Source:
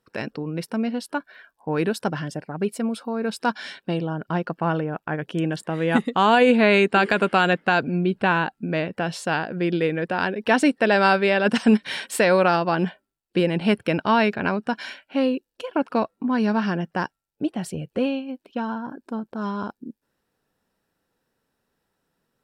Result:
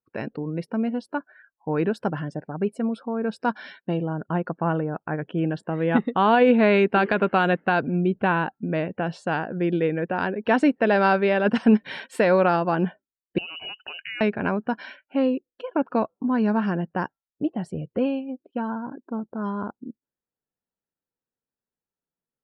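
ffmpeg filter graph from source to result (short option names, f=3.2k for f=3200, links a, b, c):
-filter_complex "[0:a]asettb=1/sr,asplit=3[a][b][c];[a]atrim=end=13.384[d];[b]atrim=start=13.38:end=14.21,asetpts=PTS-STARTPTS,afade=t=in:d=0.004:c=qsin,afade=t=out:st=0.826:d=0.004:c=qsin,acompressor=threshold=-26dB:ratio=8:attack=3.2:release=140:knee=1:detection=peak,lowpass=f=2.6k:t=q:w=0.5098,lowpass=f=2.6k:t=q:w=0.6013,lowpass=f=2.6k:t=q:w=0.9,lowpass=f=2.6k:t=q:w=2.563,afreqshift=-3100[e];[c]atrim=start=14.206[f];[d][e]acrossfade=d=0.004:c1=hsin:c2=qsin[g];[g][f]acrossfade=d=0.004:c1=qsin:c2=hsin,afftdn=nr=20:nf=-44,lowpass=f=1.5k:p=1"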